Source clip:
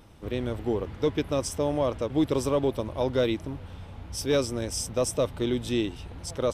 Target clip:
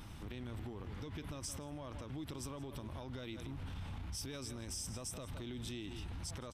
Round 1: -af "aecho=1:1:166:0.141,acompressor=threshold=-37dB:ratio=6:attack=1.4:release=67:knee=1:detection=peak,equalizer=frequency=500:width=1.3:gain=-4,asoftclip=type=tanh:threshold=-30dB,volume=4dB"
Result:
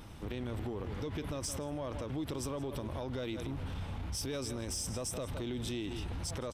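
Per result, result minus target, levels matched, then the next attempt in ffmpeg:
downward compressor: peak gain reduction −5.5 dB; 500 Hz band +4.0 dB
-af "aecho=1:1:166:0.141,acompressor=threshold=-43.5dB:ratio=6:attack=1.4:release=67:knee=1:detection=peak,equalizer=frequency=500:width=1.3:gain=-4,asoftclip=type=tanh:threshold=-30dB,volume=4dB"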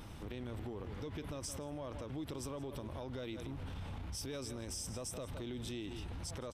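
500 Hz band +4.0 dB
-af "aecho=1:1:166:0.141,acompressor=threshold=-43.5dB:ratio=6:attack=1.4:release=67:knee=1:detection=peak,equalizer=frequency=500:width=1.3:gain=-10.5,asoftclip=type=tanh:threshold=-30dB,volume=4dB"

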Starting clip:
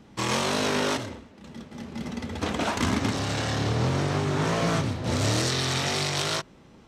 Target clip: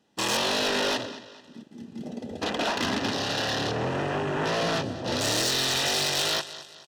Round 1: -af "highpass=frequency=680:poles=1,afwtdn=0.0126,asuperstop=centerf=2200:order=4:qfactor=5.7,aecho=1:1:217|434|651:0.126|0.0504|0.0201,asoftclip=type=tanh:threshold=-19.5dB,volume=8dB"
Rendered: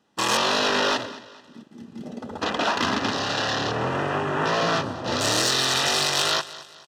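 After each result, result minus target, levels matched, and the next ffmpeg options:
soft clipping: distortion −10 dB; 1,000 Hz band +2.5 dB
-af "highpass=frequency=680:poles=1,afwtdn=0.0126,asuperstop=centerf=2200:order=4:qfactor=5.7,aecho=1:1:217|434|651:0.126|0.0504|0.0201,asoftclip=type=tanh:threshold=-28.5dB,volume=8dB"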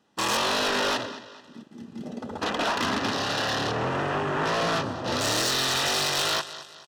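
1,000 Hz band +2.5 dB
-af "highpass=frequency=680:poles=1,equalizer=frequency=1200:width=2.1:gain=-7.5,afwtdn=0.0126,asuperstop=centerf=2200:order=4:qfactor=5.7,aecho=1:1:217|434|651:0.126|0.0504|0.0201,asoftclip=type=tanh:threshold=-28.5dB,volume=8dB"

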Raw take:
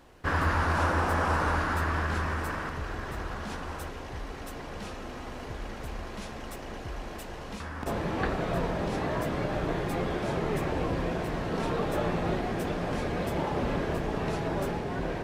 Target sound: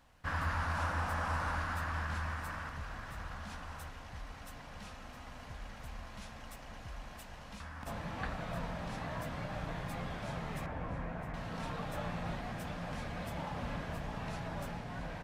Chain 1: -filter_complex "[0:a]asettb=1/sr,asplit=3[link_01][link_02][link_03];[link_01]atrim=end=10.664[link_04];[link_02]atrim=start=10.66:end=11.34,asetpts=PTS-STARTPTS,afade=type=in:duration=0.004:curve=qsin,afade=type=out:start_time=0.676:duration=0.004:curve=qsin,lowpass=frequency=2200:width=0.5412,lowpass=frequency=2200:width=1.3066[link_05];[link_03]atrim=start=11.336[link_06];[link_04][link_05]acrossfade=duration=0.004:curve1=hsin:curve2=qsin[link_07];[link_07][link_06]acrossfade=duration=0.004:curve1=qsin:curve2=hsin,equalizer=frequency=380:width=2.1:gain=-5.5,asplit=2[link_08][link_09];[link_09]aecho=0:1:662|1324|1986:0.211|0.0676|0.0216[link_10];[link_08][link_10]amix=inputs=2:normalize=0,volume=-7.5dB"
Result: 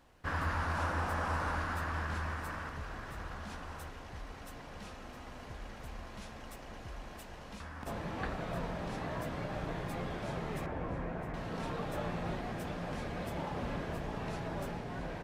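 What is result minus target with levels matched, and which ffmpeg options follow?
500 Hz band +3.0 dB
-filter_complex "[0:a]asettb=1/sr,asplit=3[link_01][link_02][link_03];[link_01]atrim=end=10.664[link_04];[link_02]atrim=start=10.66:end=11.34,asetpts=PTS-STARTPTS,afade=type=in:duration=0.004:curve=qsin,afade=type=out:start_time=0.676:duration=0.004:curve=qsin,lowpass=frequency=2200:width=0.5412,lowpass=frequency=2200:width=1.3066[link_05];[link_03]atrim=start=11.336[link_06];[link_04][link_05]acrossfade=duration=0.004:curve1=hsin:curve2=qsin[link_07];[link_07][link_06]acrossfade=duration=0.004:curve1=qsin:curve2=hsin,equalizer=frequency=380:width=2.1:gain=-16,asplit=2[link_08][link_09];[link_09]aecho=0:1:662|1324|1986:0.211|0.0676|0.0216[link_10];[link_08][link_10]amix=inputs=2:normalize=0,volume=-7.5dB"

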